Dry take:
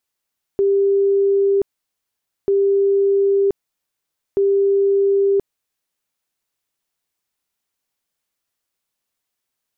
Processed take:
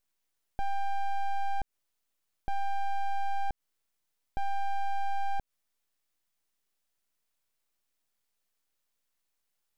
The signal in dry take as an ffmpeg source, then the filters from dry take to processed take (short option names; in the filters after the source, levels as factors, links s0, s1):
-f lavfi -i "aevalsrc='0.237*sin(2*PI*396*mod(t,1.89))*lt(mod(t,1.89),407/396)':d=5.67:s=44100"
-af "aeval=exprs='abs(val(0))':c=same,alimiter=limit=0.0631:level=0:latency=1:release=140"